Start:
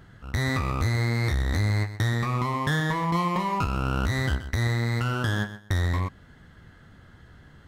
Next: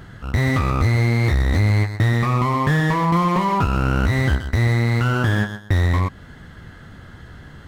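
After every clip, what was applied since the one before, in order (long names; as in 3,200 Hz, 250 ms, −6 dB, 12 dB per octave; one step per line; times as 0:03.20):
in parallel at −2.5 dB: downward compressor, threshold −32 dBFS, peak gain reduction 10.5 dB
on the sum: slew-rate limiting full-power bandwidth 77 Hz
level +5.5 dB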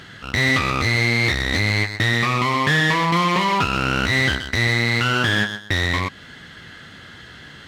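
meter weighting curve D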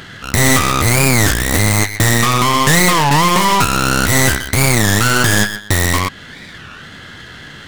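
stylus tracing distortion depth 0.3 ms
wow of a warped record 33 1/3 rpm, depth 250 cents
level +6.5 dB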